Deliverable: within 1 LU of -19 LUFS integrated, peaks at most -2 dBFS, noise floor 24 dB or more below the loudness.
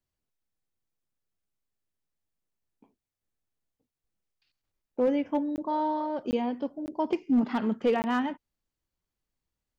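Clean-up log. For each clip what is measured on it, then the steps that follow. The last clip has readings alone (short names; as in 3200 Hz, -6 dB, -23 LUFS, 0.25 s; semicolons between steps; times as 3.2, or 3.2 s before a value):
clipped 0.2%; flat tops at -18.0 dBFS; dropouts 4; longest dropout 19 ms; loudness -29.0 LUFS; peak -18.0 dBFS; loudness target -19.0 LUFS
-> clip repair -18 dBFS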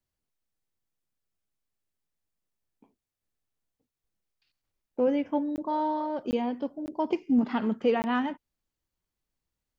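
clipped 0.0%; dropouts 4; longest dropout 19 ms
-> interpolate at 5.56/6.31/6.86/8.02, 19 ms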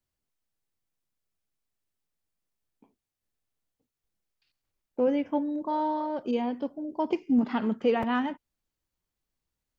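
dropouts 0; loudness -28.5 LUFS; peak -14.0 dBFS; loudness target -19.0 LUFS
-> gain +9.5 dB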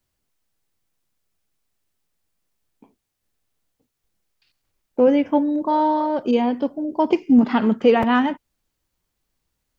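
loudness -19.0 LUFS; peak -4.5 dBFS; noise floor -78 dBFS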